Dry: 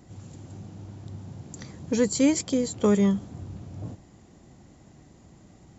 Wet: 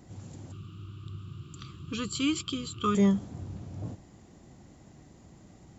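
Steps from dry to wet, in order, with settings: 0.52–2.95 s: FFT filter 150 Hz 0 dB, 240 Hz -11 dB, 350 Hz -1 dB, 560 Hz -25 dB, 870 Hz -23 dB, 1.2 kHz +12 dB, 1.9 kHz -15 dB, 2.8 kHz +11 dB, 6.4 kHz -12 dB, 11 kHz +9 dB; trim -1 dB

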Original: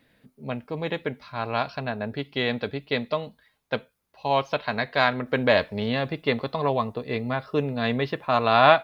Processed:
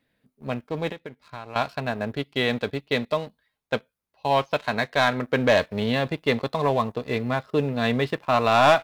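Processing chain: waveshaping leveller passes 2; 0.91–1.56 s: compression 12:1, threshold -28 dBFS, peak gain reduction 13.5 dB; trim -5.5 dB

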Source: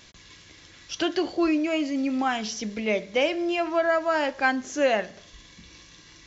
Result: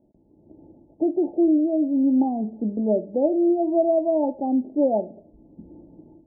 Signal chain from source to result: peaking EQ 350 Hz +12 dB 1 oct; level rider gain up to 13.5 dB; rippled Chebyshev low-pass 890 Hz, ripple 9 dB; trim -4.5 dB

